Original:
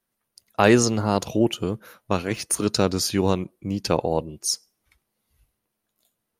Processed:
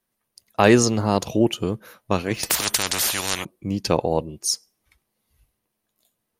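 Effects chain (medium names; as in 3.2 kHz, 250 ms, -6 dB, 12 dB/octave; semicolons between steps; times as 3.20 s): band-stop 1.4 kHz, Q 16; 2.43–3.45 s: spectrum-flattening compressor 10:1; trim +1.5 dB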